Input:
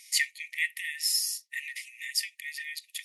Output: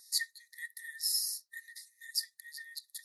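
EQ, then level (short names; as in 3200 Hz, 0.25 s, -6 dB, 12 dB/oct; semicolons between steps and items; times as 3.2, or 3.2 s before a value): elliptic band-stop 1700–4000 Hz, stop band 40 dB; bell 7100 Hz -7 dB 0.99 oct; 0.0 dB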